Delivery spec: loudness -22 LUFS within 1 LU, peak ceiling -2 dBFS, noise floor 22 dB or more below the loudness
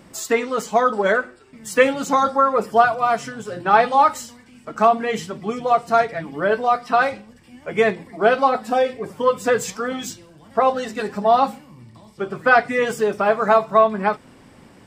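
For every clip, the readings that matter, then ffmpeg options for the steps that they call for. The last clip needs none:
loudness -19.5 LUFS; peak level -1.5 dBFS; loudness target -22.0 LUFS
-> -af "volume=0.75"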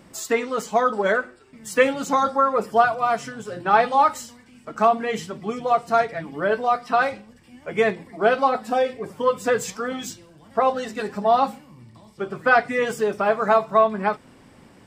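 loudness -22.0 LUFS; peak level -4.0 dBFS; noise floor -51 dBFS

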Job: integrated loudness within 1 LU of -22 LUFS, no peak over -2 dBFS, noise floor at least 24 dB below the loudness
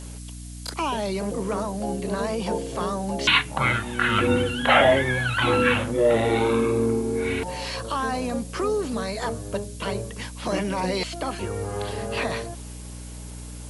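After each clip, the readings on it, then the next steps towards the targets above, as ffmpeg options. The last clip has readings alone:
hum 60 Hz; highest harmonic 300 Hz; hum level -36 dBFS; noise floor -38 dBFS; noise floor target -48 dBFS; loudness -24.0 LUFS; peak level -4.5 dBFS; loudness target -22.0 LUFS
-> -af "bandreject=f=60:t=h:w=4,bandreject=f=120:t=h:w=4,bandreject=f=180:t=h:w=4,bandreject=f=240:t=h:w=4,bandreject=f=300:t=h:w=4"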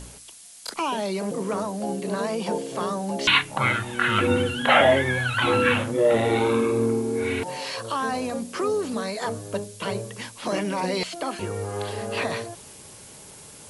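hum not found; noise floor -45 dBFS; noise floor target -49 dBFS
-> -af "afftdn=nr=6:nf=-45"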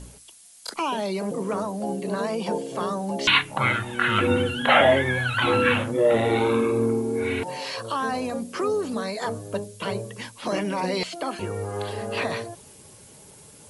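noise floor -49 dBFS; loudness -24.5 LUFS; peak level -5.0 dBFS; loudness target -22.0 LUFS
-> -af "volume=1.33"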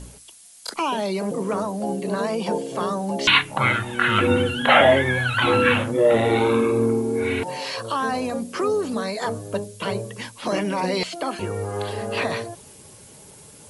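loudness -22.0 LUFS; peak level -2.5 dBFS; noise floor -47 dBFS

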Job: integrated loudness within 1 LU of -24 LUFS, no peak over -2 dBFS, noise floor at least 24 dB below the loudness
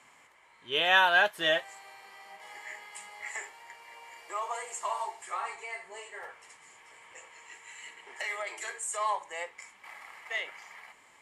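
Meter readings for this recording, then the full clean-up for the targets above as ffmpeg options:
loudness -30.5 LUFS; peak level -11.0 dBFS; loudness target -24.0 LUFS
-> -af "volume=2.11"

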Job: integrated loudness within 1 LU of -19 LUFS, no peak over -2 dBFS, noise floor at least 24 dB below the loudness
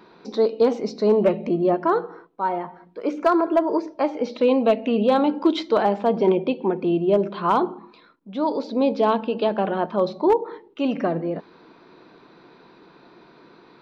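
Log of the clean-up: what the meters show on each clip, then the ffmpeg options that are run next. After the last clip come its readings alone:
loudness -22.0 LUFS; peak level -9.5 dBFS; loudness target -19.0 LUFS
-> -af "volume=1.41"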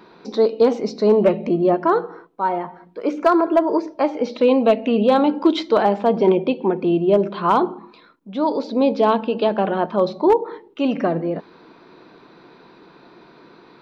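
loudness -19.0 LUFS; peak level -6.5 dBFS; noise floor -49 dBFS

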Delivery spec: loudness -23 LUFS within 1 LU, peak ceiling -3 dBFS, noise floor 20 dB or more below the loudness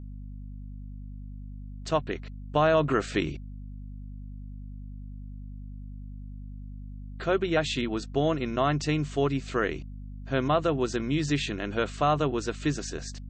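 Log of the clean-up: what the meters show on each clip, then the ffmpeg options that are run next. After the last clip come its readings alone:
hum 50 Hz; highest harmonic 250 Hz; hum level -37 dBFS; loudness -28.0 LUFS; peak level -11.0 dBFS; loudness target -23.0 LUFS
-> -af "bandreject=f=50:t=h:w=6,bandreject=f=100:t=h:w=6,bandreject=f=150:t=h:w=6,bandreject=f=200:t=h:w=6,bandreject=f=250:t=h:w=6"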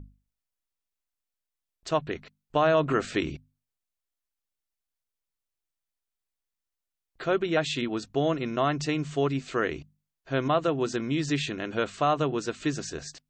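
hum not found; loudness -28.0 LUFS; peak level -11.0 dBFS; loudness target -23.0 LUFS
-> -af "volume=1.78"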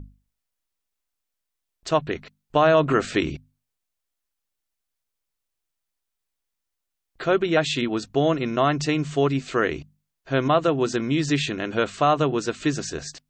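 loudness -23.0 LUFS; peak level -6.0 dBFS; noise floor -82 dBFS

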